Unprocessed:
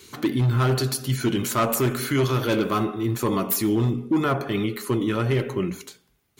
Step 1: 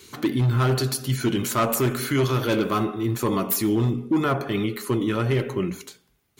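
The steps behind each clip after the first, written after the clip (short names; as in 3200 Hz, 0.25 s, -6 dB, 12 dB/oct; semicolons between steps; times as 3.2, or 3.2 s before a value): nothing audible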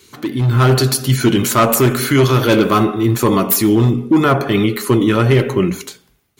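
AGC gain up to 11.5 dB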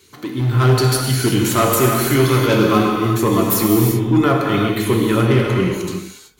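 non-linear reverb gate 0.4 s flat, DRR 0 dB; gain -4.5 dB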